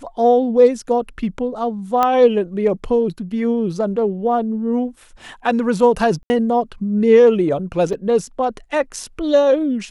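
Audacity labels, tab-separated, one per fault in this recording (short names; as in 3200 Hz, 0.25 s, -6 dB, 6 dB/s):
2.030000	2.030000	pop -5 dBFS
6.230000	6.300000	gap 70 ms
7.930000	7.930000	gap 3.4 ms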